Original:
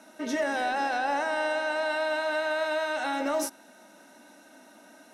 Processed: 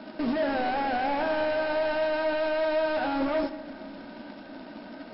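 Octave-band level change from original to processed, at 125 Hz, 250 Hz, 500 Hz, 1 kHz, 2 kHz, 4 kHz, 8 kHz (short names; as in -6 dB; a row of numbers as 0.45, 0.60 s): n/a, +5.0 dB, +3.0 dB, 0.0 dB, -3.0 dB, -1.5 dB, under -40 dB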